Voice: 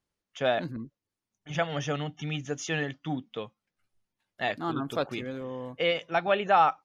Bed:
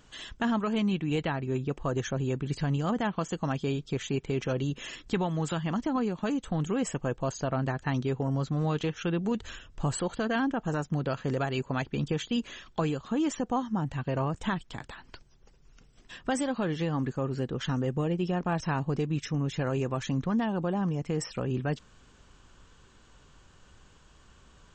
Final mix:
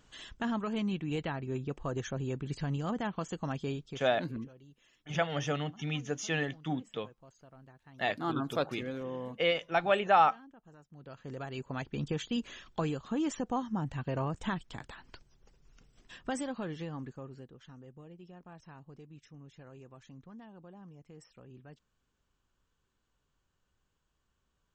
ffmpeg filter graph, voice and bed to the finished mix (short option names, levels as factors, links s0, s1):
-filter_complex "[0:a]adelay=3600,volume=0.794[s0];[1:a]volume=7.08,afade=t=out:st=3.7:d=0.42:silence=0.0891251,afade=t=in:st=10.92:d=1.25:silence=0.0749894,afade=t=out:st=15.91:d=1.67:silence=0.11885[s1];[s0][s1]amix=inputs=2:normalize=0"